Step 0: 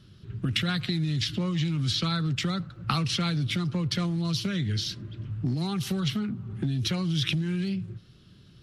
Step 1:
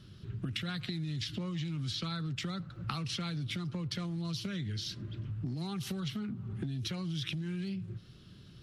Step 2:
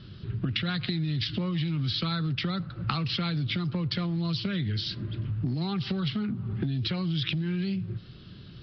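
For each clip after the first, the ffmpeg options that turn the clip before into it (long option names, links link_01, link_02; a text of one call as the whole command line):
ffmpeg -i in.wav -af "acompressor=threshold=-37dB:ratio=3" out.wav
ffmpeg -i in.wav -af "aresample=11025,aresample=44100,volume=7.5dB" out.wav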